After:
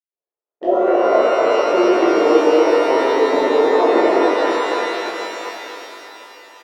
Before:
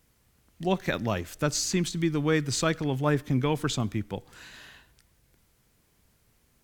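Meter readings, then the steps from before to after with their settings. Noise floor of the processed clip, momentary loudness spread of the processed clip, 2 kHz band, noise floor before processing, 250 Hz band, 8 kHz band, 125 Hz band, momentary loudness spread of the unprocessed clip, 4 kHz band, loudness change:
under -85 dBFS, 14 LU, +11.0 dB, -67 dBFS, +9.5 dB, n/a, under -20 dB, 12 LU, +6.5 dB, +12.5 dB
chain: octaver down 2 oct, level +2 dB; inverse Chebyshev high-pass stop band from 150 Hz, stop band 50 dB; treble ducked by the level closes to 800 Hz, closed at -28 dBFS; gate -60 dBFS, range -48 dB; Bessel low-pass 1100 Hz, order 2; bell 530 Hz +12 dB 1.5 oct; compressor, threshold -32 dBFS, peak gain reduction 16.5 dB; step gate ".xx.xxxxxx..x" 130 bpm; doubler 20 ms -11 dB; echo 0.26 s -9 dB; maximiser +26 dB; shimmer reverb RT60 3.8 s, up +12 st, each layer -8 dB, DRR -10.5 dB; gain -13 dB

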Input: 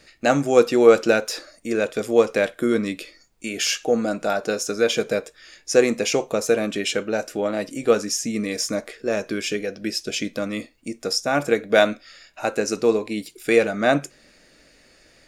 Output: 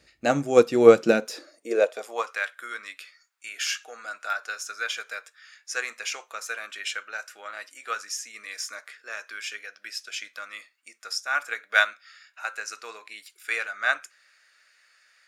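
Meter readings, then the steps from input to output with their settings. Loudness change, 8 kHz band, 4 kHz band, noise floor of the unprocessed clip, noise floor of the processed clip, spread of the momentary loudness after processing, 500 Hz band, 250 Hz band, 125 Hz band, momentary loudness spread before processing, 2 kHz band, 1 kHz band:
-4.5 dB, -7.0 dB, -6.0 dB, -56 dBFS, -66 dBFS, 19 LU, -6.0 dB, -9.0 dB, n/a, 12 LU, 0.0 dB, -4.0 dB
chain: high-pass sweep 61 Hz -> 1400 Hz, 0.51–2.4; upward expander 1.5:1, over -23 dBFS

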